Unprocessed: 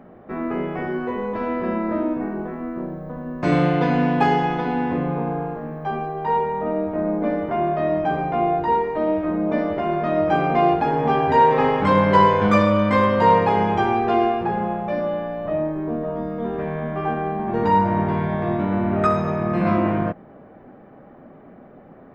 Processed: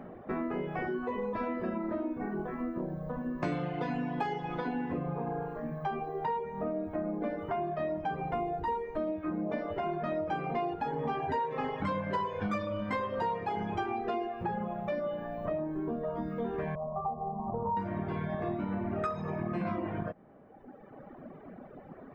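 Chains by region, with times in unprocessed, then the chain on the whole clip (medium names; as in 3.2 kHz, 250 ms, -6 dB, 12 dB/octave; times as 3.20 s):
8.32–9.12 s: median filter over 5 samples + bass shelf 73 Hz +11 dB
16.75–17.77 s: Chebyshev low-pass 1.3 kHz, order 8 + static phaser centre 760 Hz, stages 4
whole clip: reverb removal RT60 1.5 s; compression, threshold -31 dBFS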